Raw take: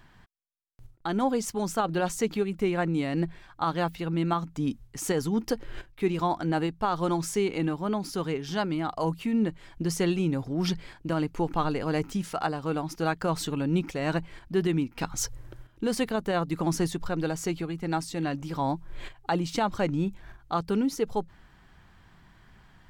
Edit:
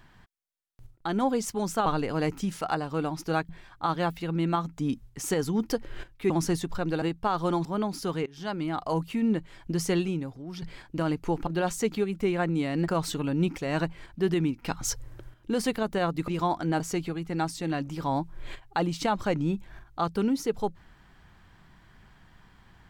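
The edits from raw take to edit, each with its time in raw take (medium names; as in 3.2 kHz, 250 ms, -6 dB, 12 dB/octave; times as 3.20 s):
1.86–3.27 s: swap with 11.58–13.21 s
6.08–6.60 s: swap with 16.61–17.33 s
7.23–7.76 s: delete
8.37–8.99 s: fade in equal-power, from -20.5 dB
10.08–10.73 s: fade out quadratic, to -12.5 dB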